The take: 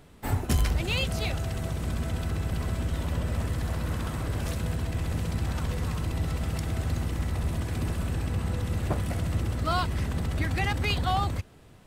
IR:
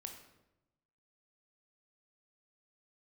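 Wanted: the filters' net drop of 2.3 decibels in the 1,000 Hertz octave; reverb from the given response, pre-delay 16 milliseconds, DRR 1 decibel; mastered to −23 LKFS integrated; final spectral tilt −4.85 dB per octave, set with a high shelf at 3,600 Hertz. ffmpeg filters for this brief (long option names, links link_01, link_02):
-filter_complex "[0:a]equalizer=frequency=1000:width_type=o:gain=-4,highshelf=frequency=3600:gain=7.5,asplit=2[link_01][link_02];[1:a]atrim=start_sample=2205,adelay=16[link_03];[link_02][link_03]afir=irnorm=-1:irlink=0,volume=3dB[link_04];[link_01][link_04]amix=inputs=2:normalize=0,volume=3.5dB"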